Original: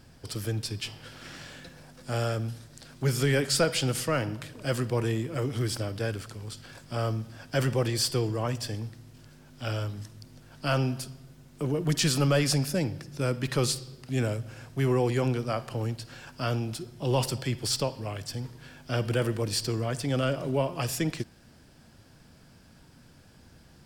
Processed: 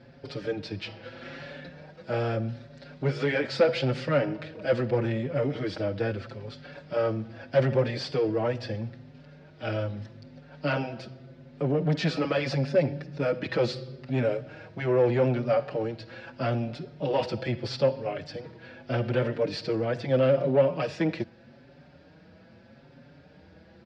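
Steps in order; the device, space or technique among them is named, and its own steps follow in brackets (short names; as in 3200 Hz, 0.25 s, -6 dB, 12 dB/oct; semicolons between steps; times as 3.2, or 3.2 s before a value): barber-pole flanger into a guitar amplifier (endless flanger 5.4 ms +0.79 Hz; soft clip -25 dBFS, distortion -13 dB; speaker cabinet 95–3800 Hz, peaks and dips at 110 Hz -4 dB, 550 Hz +8 dB, 1100 Hz -6 dB, 3100 Hz -6 dB); gain +6.5 dB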